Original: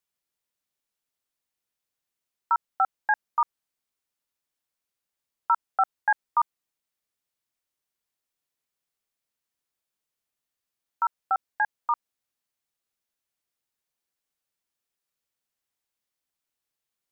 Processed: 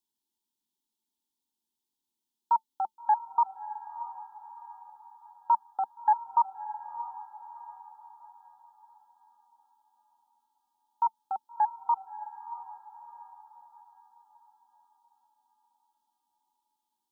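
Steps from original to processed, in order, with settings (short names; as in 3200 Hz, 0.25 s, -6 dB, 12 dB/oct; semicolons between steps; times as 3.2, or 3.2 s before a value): EQ curve 110 Hz 0 dB, 150 Hz -10 dB, 220 Hz +13 dB, 370 Hz +9 dB, 620 Hz -16 dB, 890 Hz +12 dB, 1300 Hz -16 dB, 1900 Hz -20 dB, 3300 Hz +6 dB, 4800 Hz +4 dB; on a send: diffused feedback echo 0.638 s, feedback 46%, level -12 dB; on the sum: gain -5.5 dB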